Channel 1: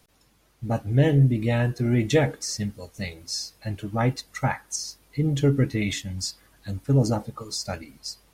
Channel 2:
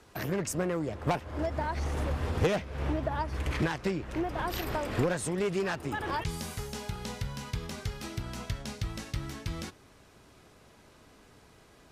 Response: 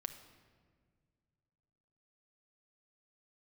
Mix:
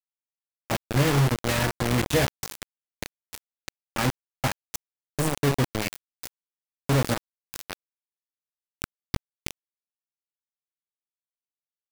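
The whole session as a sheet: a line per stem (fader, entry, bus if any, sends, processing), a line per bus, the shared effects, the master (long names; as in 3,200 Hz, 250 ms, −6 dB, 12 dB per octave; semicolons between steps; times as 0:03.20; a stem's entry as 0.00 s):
−4.0 dB, 0.00 s, send −23 dB, no echo send, no processing
−3.0 dB, 0.00 s, send −10.5 dB, echo send −20 dB, mains-hum notches 60/120/180/240/300/360/420/480/540 Hz; comb filter 0.9 ms, depth 97%; automatic ducking −14 dB, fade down 1.20 s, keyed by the first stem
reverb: on, RT60 1.9 s, pre-delay 6 ms
echo: repeating echo 74 ms, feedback 32%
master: bit reduction 4 bits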